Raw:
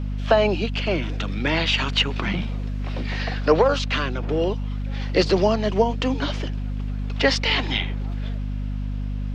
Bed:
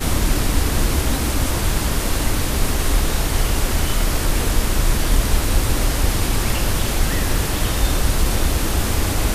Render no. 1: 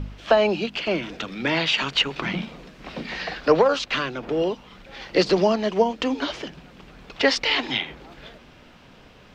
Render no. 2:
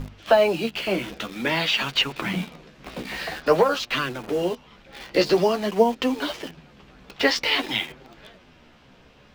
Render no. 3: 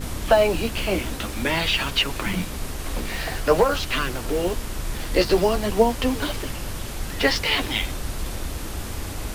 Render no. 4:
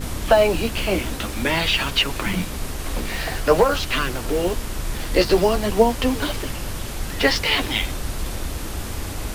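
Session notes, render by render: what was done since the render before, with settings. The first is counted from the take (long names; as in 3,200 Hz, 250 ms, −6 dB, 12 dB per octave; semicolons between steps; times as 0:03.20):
hum removal 50 Hz, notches 5
flanger 0.5 Hz, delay 7.4 ms, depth 8.8 ms, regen +28%; in parallel at −7 dB: bit reduction 6 bits
mix in bed −11.5 dB
level +2 dB; brickwall limiter −3 dBFS, peak gain reduction 1 dB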